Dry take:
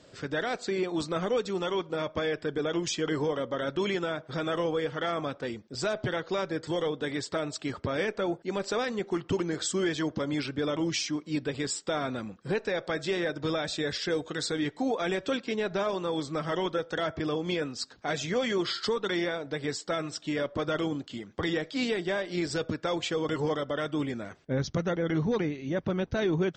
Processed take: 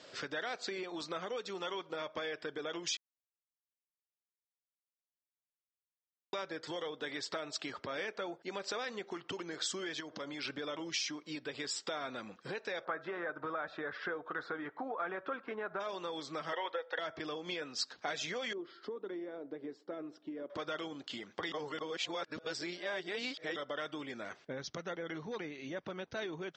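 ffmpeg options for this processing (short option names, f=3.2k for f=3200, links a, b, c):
-filter_complex "[0:a]asettb=1/sr,asplit=3[a][b][c];[a]atrim=end=10.004[d];[b]atrim=start=10:end=10.5,asetpts=PTS-STARTPTS,afade=t=in:d=0.004:c=qsin,afade=t=out:st=0.496:d=0.004:c=qsin,acompressor=threshold=-37dB:ratio=3:attack=3.2:release=140:knee=1:detection=peak[e];[c]atrim=start=10.496[f];[d][e]acrossfade=d=0.004:c1=hsin:c2=qsin[g];[g][f]acrossfade=d=0.004:c1=qsin:c2=hsin,asplit=3[h][i][j];[h]afade=t=out:st=12.84:d=0.02[k];[i]lowpass=f=1.3k:t=q:w=2.8,afade=t=in:st=12.84:d=0.02,afade=t=out:st=15.79:d=0.02[l];[j]afade=t=in:st=15.79:d=0.02[m];[k][l][m]amix=inputs=3:normalize=0,asettb=1/sr,asplit=3[n][o][p];[n]atrim=end=16.534[q];[o]atrim=start=16.53:end=16.99,asetpts=PTS-STARTPTS,afade=t=in:d=0.004:c=qsin,afade=t=out:st=0.456:d=0.004:c=qsin,highpass=490,equalizer=f=510:t=q:w=4:g=9,equalizer=f=890:t=q:w=4:g=8,equalizer=f=1.9k:t=q:w=4:g=9,lowpass=f=4.3k:w=0.5412,lowpass=f=4.3k:w=1.3066[r];[p]atrim=start=16.986[s];[q][r]acrossfade=d=0.004:c1=hsin:c2=qsin[t];[t][s]acrossfade=d=0.004:c1=qsin:c2=hsin,asettb=1/sr,asplit=3[u][v][w];[u]atrim=end=18.534[x];[v]atrim=start=18.53:end=20.5,asetpts=PTS-STARTPTS,afade=t=in:d=0.004:c=qsin,afade=t=out:st=1.966:d=0.004:c=qsin,bandpass=f=310:t=q:w=1.9[y];[w]atrim=start=20.496[z];[x][y]acrossfade=d=0.004:c1=hsin:c2=qsin[aa];[aa][z]acrossfade=d=0.004:c1=qsin:c2=hsin,asplit=5[ab][ac][ad][ae][af];[ab]atrim=end=2.97,asetpts=PTS-STARTPTS,afade=t=out:st=2.966:d=0.004:c=hsin[ag];[ac]atrim=start=2.97:end=6.33,asetpts=PTS-STARTPTS,volume=0[ah];[ad]atrim=start=6.33:end=21.522,asetpts=PTS-STARTPTS,afade=t=in:d=0.004:c=hsin[ai];[ae]atrim=start=21.518:end=23.562,asetpts=PTS-STARTPTS,areverse[aj];[af]atrim=start=23.558[ak];[ag][ah][ai]concat=n=3:v=0:a=1[al];[al][aj]acrossfade=d=0.004:c1=hsin:c2=hsin[am];[am][ak]acrossfade=d=0.004:c1=hsin:c2=hsin,lowpass=f=6.6k:w=0.5412,lowpass=f=6.6k:w=1.3066,acompressor=threshold=-37dB:ratio=6,highpass=f=790:p=1,volume=5dB"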